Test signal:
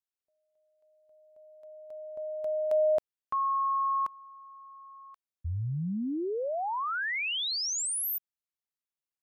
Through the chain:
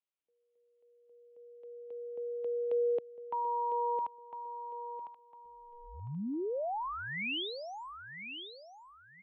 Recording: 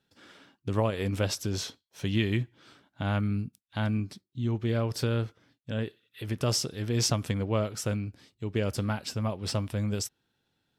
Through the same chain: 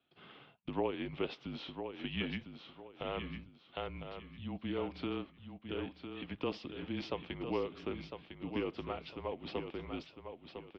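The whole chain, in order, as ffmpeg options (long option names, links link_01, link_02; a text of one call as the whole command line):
ffmpeg -i in.wav -filter_complex "[0:a]lowshelf=frequency=300:gain=-11.5,asplit=2[link_01][link_02];[link_02]acompressor=threshold=-41dB:ratio=6:release=750:knee=6:detection=rms,volume=2.5dB[link_03];[link_01][link_03]amix=inputs=2:normalize=0,equalizer=frequency=1700:width=1.4:gain=-9,aecho=1:1:1004|2008|3012:0.398|0.115|0.0335,highpass=frequency=280:width_type=q:width=0.5412,highpass=frequency=280:width_type=q:width=1.307,lowpass=frequency=3400:width_type=q:width=0.5176,lowpass=frequency=3400:width_type=q:width=0.7071,lowpass=frequency=3400:width_type=q:width=1.932,afreqshift=-140,volume=-3.5dB" out.wav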